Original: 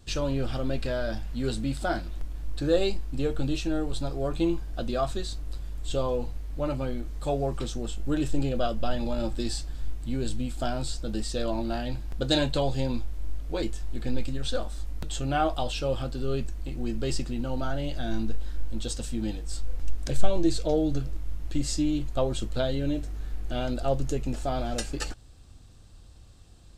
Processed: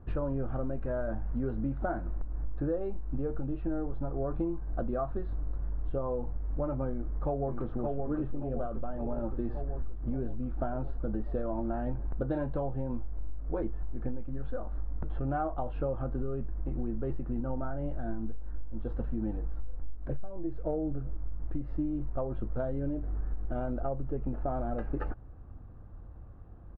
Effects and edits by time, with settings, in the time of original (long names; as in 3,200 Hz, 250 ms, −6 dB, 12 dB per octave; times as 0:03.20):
0:06.90–0:07.89: delay throw 570 ms, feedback 65%, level −4 dB
whole clip: low-pass filter 1,400 Hz 24 dB per octave; downward compressor 16 to 1, threshold −31 dBFS; level +3.5 dB